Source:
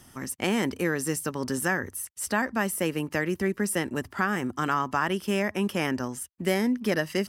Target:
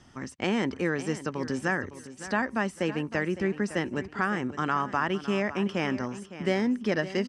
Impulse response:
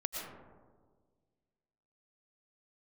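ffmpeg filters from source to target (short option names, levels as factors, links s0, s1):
-filter_complex "[0:a]lowpass=f=7000:w=0.5412,lowpass=f=7000:w=1.3066,highshelf=f=5100:g=-6,asplit=2[s0][s1];[s1]aecho=0:1:559|1118|1677:0.2|0.0579|0.0168[s2];[s0][s2]amix=inputs=2:normalize=0,volume=0.891"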